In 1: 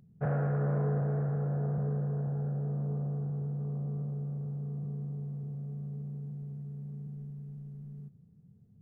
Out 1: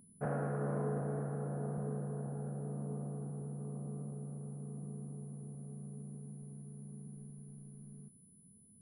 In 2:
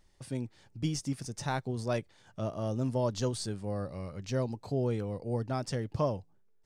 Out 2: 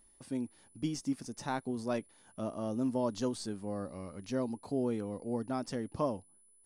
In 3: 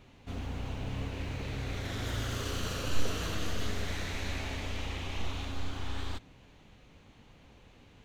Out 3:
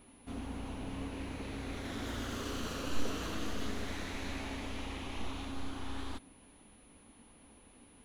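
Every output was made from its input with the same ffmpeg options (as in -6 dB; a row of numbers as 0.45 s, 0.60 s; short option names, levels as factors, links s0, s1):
-af "aeval=exprs='val(0)+0.00126*sin(2*PI*10000*n/s)':c=same,equalizer=f=125:t=o:w=1:g=-8,equalizer=f=250:t=o:w=1:g=9,equalizer=f=1000:t=o:w=1:g=4,volume=0.562"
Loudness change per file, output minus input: -7.0 LU, -2.5 LU, -4.0 LU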